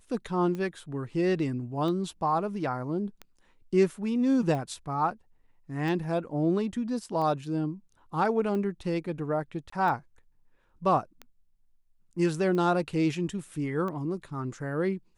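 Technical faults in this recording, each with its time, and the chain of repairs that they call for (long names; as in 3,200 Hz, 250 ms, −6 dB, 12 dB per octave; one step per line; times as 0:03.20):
scratch tick 45 rpm −24 dBFS
0:09.70–0:09.72: drop-out 24 ms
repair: click removal
repair the gap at 0:09.70, 24 ms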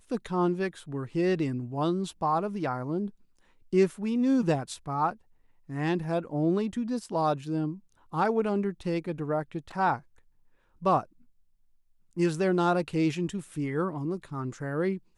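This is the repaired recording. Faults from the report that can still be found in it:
none of them is left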